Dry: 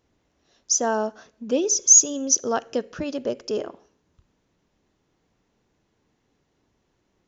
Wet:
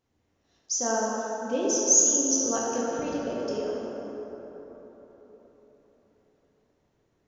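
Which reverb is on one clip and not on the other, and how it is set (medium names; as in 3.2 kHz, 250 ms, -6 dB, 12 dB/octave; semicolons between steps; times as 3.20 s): plate-style reverb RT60 4.3 s, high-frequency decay 0.4×, DRR -5.5 dB; trim -9 dB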